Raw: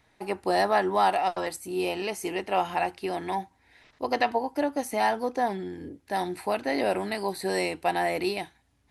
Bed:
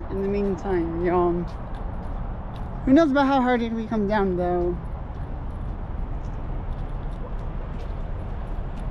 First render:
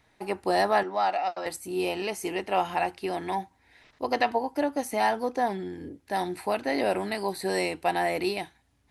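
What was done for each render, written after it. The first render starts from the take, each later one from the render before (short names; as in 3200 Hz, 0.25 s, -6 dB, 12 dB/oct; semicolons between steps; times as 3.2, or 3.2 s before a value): 0.83–1.46 speaker cabinet 320–5700 Hz, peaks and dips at 410 Hz -10 dB, 1000 Hz -8 dB, 1700 Hz -4 dB, 3300 Hz -9 dB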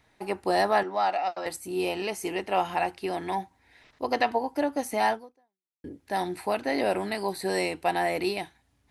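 5.12–5.84 fade out exponential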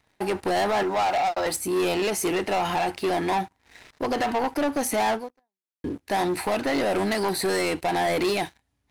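limiter -19 dBFS, peak gain reduction 7.5 dB; sample leveller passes 3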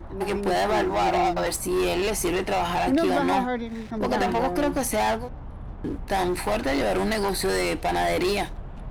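add bed -6.5 dB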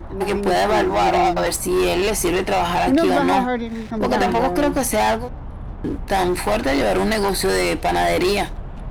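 gain +5.5 dB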